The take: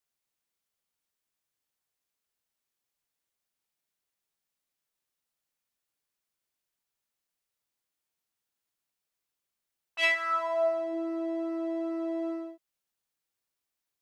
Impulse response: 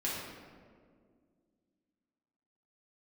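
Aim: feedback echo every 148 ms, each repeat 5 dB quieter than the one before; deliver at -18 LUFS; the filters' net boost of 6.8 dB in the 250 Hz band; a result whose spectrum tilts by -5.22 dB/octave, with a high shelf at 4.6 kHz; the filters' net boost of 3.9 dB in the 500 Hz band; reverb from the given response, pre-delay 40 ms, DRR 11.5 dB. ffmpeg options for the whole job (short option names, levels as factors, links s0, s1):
-filter_complex "[0:a]equalizer=f=250:t=o:g=8.5,equalizer=f=500:t=o:g=4,highshelf=f=4600:g=7,aecho=1:1:148|296|444|592|740|888|1036:0.562|0.315|0.176|0.0988|0.0553|0.031|0.0173,asplit=2[s0][s1];[1:a]atrim=start_sample=2205,adelay=40[s2];[s1][s2]afir=irnorm=-1:irlink=0,volume=0.141[s3];[s0][s3]amix=inputs=2:normalize=0,volume=2.99"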